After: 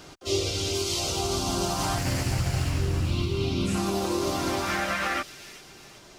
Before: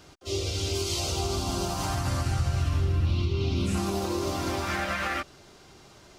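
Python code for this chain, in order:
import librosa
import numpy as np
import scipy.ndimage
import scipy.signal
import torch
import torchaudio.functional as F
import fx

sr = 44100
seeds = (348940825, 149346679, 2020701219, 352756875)

p1 = fx.lower_of_two(x, sr, delay_ms=0.41, at=(1.98, 3.11))
p2 = fx.peak_eq(p1, sr, hz=75.0, db=-9.0, octaves=0.71)
p3 = fx.rider(p2, sr, range_db=10, speed_s=0.5)
p4 = p3 + fx.echo_wet_highpass(p3, sr, ms=383, feedback_pct=47, hz=4100.0, wet_db=-6.5, dry=0)
y = F.gain(torch.from_numpy(p4), 3.0).numpy()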